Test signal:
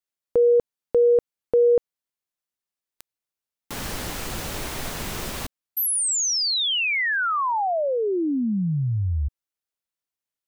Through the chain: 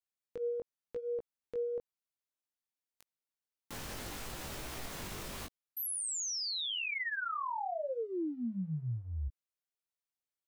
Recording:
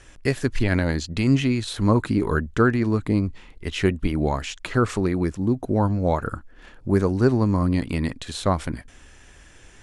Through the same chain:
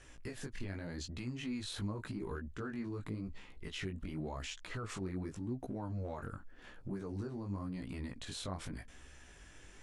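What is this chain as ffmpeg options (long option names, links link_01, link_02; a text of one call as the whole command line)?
ffmpeg -i in.wav -af "acompressor=threshold=-27dB:ratio=10:attack=0.21:release=89:knee=6:detection=rms,flanger=delay=15:depth=6.5:speed=0.88,volume=-4.5dB" out.wav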